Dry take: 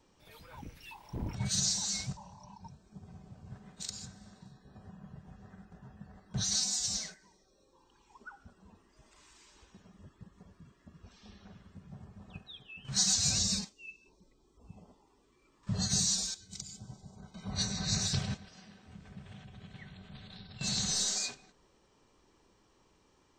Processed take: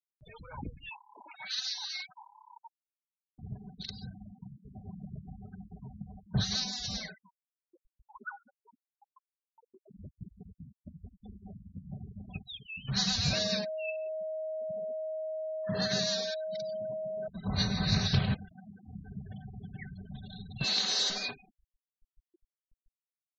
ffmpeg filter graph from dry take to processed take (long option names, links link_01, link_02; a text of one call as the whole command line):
ffmpeg -i in.wav -filter_complex "[0:a]asettb=1/sr,asplit=3[link_01][link_02][link_03];[link_01]atrim=end=0.894[link_04];[link_02]atrim=start=0.89:end=3.39,asetpts=PTS-STARTPTS,afade=type=in:duration=0.004:curve=qsin,afade=type=out:start_time=2.496:duration=0.004:curve=qsin,acrossover=split=8500[link_05][link_06];[link_06]acompressor=threshold=-52dB:ratio=4:attack=1:release=60[link_07];[link_05][link_07]amix=inputs=2:normalize=0,highpass=1100,equalizer=frequency=7400:width=1.4:gain=-4[link_08];[link_03]atrim=start=3.386[link_09];[link_04][link_08]acrossfade=duration=0.004:curve1=hsin:curve2=qsin[link_10];[link_10][link_09]acrossfade=duration=0.004:curve1=qsin:curve2=hsin,asettb=1/sr,asplit=3[link_11][link_12][link_13];[link_11]atrim=end=8.254[link_14];[link_12]atrim=start=8.25:end=9.91,asetpts=PTS-STARTPTS,afade=type=in:duration=0.004:curve=qsin,afade=type=out:start_time=1.656:duration=0.004:curve=qsin,highpass=frequency=300:width=0.5412,highpass=frequency=300:width=1.3066,aecho=1:1:7.5:0.31,atrim=end_sample=73206[link_15];[link_13]atrim=start=9.906[link_16];[link_14][link_15]acrossfade=duration=0.004:curve1=hsin:curve2=qsin[link_17];[link_17][link_16]acrossfade=duration=0.004:curve1=qsin:curve2=hsin,asettb=1/sr,asplit=3[link_18][link_19][link_20];[link_18]atrim=end=13.334[link_21];[link_19]atrim=start=13.33:end=17.28,asetpts=PTS-STARTPTS,afade=type=in:duration=0.004:curve=qsin,afade=type=out:start_time=3.946:duration=0.004:curve=qsin,aeval=exprs='val(0)+0.0126*sin(2*PI*630*n/s)':channel_layout=same,highpass=240,equalizer=frequency=470:width_type=q:width=4:gain=3,equalizer=frequency=670:width_type=q:width=4:gain=-3,equalizer=frequency=1700:width_type=q:width=4:gain=8,lowpass=frequency=8700:width=0.5412,lowpass=frequency=8700:width=1.3066[link_22];[link_20]atrim=start=17.276[link_23];[link_21][link_22]acrossfade=duration=0.004:curve1=hsin:curve2=qsin[link_24];[link_24][link_23]acrossfade=duration=0.004:curve1=qsin:curve2=hsin,asettb=1/sr,asplit=3[link_25][link_26][link_27];[link_25]atrim=end=20.644[link_28];[link_26]atrim=start=20.64:end=21.1,asetpts=PTS-STARTPTS,afade=type=in:duration=0.004:curve=qsin,afade=type=out:start_time=0.456:duration=0.004:curve=qsin,highpass=frequency=290:width=0.5412,highpass=frequency=290:width=1.3066,aemphasis=mode=production:type=cd[link_29];[link_27]atrim=start=21.096[link_30];[link_28][link_29]acrossfade=duration=0.004:curve1=hsin:curve2=qsin[link_31];[link_31][link_30]acrossfade=duration=0.004:curve1=qsin:curve2=hsin,lowpass=frequency=4000:width=0.5412,lowpass=frequency=4000:width=1.3066,afftfilt=real='re*gte(hypot(re,im),0.00447)':imag='im*gte(hypot(re,im),0.00447)':win_size=1024:overlap=0.75,acompressor=mode=upward:threshold=-59dB:ratio=2.5,volume=6.5dB" out.wav